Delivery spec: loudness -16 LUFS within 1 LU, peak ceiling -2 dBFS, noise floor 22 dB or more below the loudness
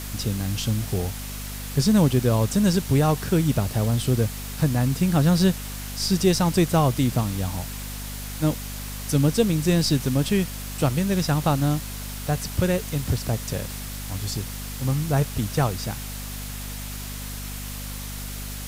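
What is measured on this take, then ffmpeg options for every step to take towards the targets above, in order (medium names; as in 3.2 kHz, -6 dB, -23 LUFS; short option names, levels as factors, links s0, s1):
hum 50 Hz; highest harmonic 250 Hz; hum level -33 dBFS; noise floor -34 dBFS; noise floor target -46 dBFS; loudness -24.0 LUFS; peak level -8.0 dBFS; loudness target -16.0 LUFS
-> -af "bandreject=f=50:t=h:w=4,bandreject=f=100:t=h:w=4,bandreject=f=150:t=h:w=4,bandreject=f=200:t=h:w=4,bandreject=f=250:t=h:w=4"
-af "afftdn=nr=12:nf=-34"
-af "volume=2.51,alimiter=limit=0.794:level=0:latency=1"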